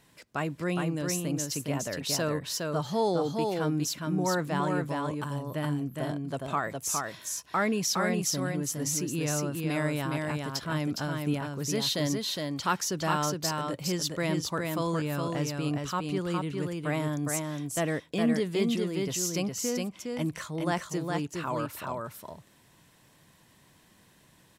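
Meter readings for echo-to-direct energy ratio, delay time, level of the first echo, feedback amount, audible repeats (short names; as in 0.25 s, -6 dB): -3.5 dB, 0.412 s, -3.5 dB, no steady repeat, 1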